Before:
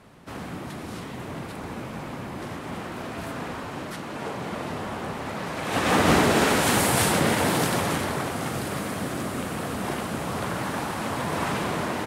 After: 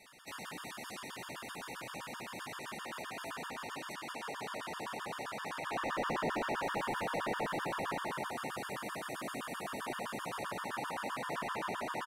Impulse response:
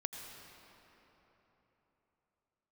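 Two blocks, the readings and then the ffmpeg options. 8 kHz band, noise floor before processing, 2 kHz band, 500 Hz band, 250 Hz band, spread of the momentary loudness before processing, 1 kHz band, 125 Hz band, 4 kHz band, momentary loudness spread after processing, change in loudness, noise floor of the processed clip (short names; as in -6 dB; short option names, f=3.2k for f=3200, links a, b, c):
-17.5 dB, -37 dBFS, -11.0 dB, -13.0 dB, -17.0 dB, 15 LU, -10.0 dB, -20.5 dB, -13.5 dB, 9 LU, -13.0 dB, -47 dBFS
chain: -filter_complex "[0:a]acrossover=split=3400[a][b];[b]acompressor=threshold=-46dB:ratio=4:attack=1:release=60[c];[a][c]amix=inputs=2:normalize=0,tiltshelf=f=970:g=-9.5,asplit=2[d][e];[e]aecho=0:1:175:0.473[f];[d][f]amix=inputs=2:normalize=0,volume=21dB,asoftclip=hard,volume=-21dB,equalizer=f=78:w=0.95:g=-9,acrossover=split=1200[g][h];[h]acompressor=threshold=-39dB:ratio=6[i];[g][i]amix=inputs=2:normalize=0,afftfilt=real='re*gt(sin(2*PI*7.7*pts/sr)*(1-2*mod(floor(b*sr/1024/920),2)),0)':imag='im*gt(sin(2*PI*7.7*pts/sr)*(1-2*mod(floor(b*sr/1024/920),2)),0)':win_size=1024:overlap=0.75,volume=-3.5dB"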